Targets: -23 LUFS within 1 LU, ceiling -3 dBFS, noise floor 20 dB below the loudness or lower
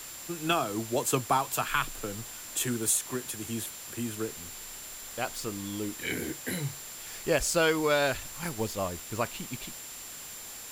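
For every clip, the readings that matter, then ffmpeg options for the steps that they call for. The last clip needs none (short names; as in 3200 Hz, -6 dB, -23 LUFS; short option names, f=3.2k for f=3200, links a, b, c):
steady tone 7300 Hz; tone level -45 dBFS; noise floor -43 dBFS; noise floor target -52 dBFS; loudness -31.5 LUFS; peak -13.0 dBFS; loudness target -23.0 LUFS
-> -af "bandreject=f=7.3k:w=30"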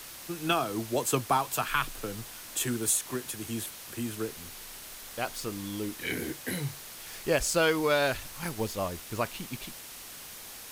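steady tone none; noise floor -45 dBFS; noise floor target -51 dBFS
-> -af "afftdn=nr=6:nf=-45"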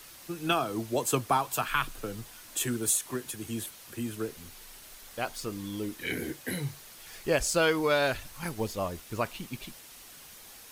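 noise floor -50 dBFS; noise floor target -51 dBFS
-> -af "afftdn=nr=6:nf=-50"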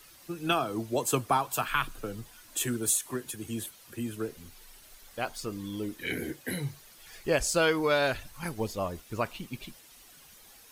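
noise floor -55 dBFS; loudness -31.0 LUFS; peak -13.0 dBFS; loudness target -23.0 LUFS
-> -af "volume=8dB"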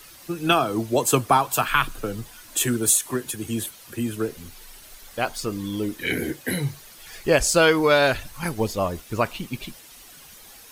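loudness -23.0 LUFS; peak -5.0 dBFS; noise floor -47 dBFS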